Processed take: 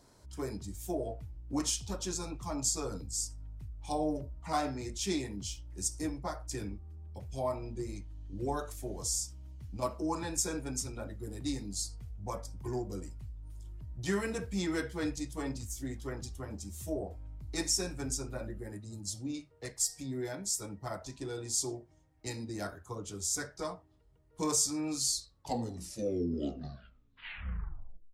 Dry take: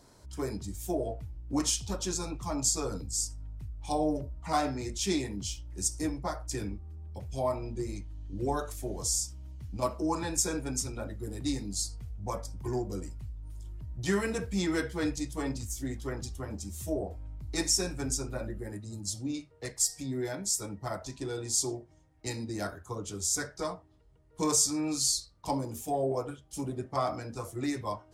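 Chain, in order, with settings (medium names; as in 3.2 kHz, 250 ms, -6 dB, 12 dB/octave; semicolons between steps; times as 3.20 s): tape stop on the ending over 2.94 s; trim -3.5 dB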